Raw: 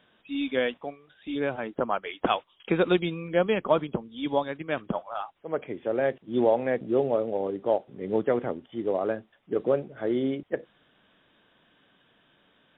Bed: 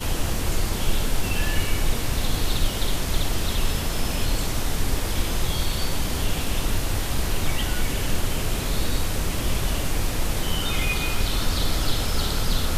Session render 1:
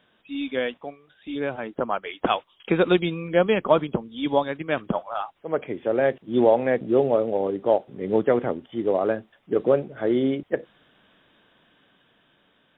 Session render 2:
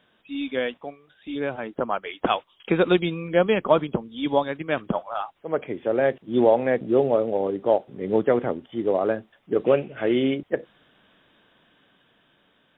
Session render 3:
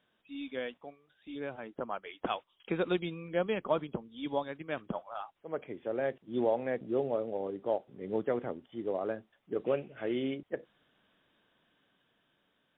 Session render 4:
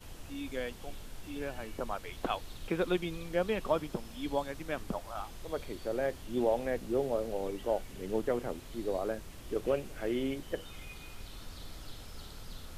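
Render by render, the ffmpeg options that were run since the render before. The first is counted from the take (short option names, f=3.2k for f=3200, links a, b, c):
-af "dynaudnorm=f=670:g=7:m=5dB"
-filter_complex "[0:a]asettb=1/sr,asplit=3[a][b][c];[a]atrim=end=9.654[d];[b]atrim=start=9.65:end=10.34,asetpts=PTS-STARTPTS,afade=t=in:d=0.004:c=qsin,afade=t=out:st=0.686:d=0.004:c=qsin,lowpass=f=2.7k:t=q:w=5.3[e];[c]atrim=start=10.336[f];[d][e]acrossfade=d=0.004:c1=hsin:c2=qsin[g];[g][f]acrossfade=d=0.004:c1=qsin:c2=hsin"
-af "volume=-11.5dB"
-filter_complex "[1:a]volume=-23dB[a];[0:a][a]amix=inputs=2:normalize=0"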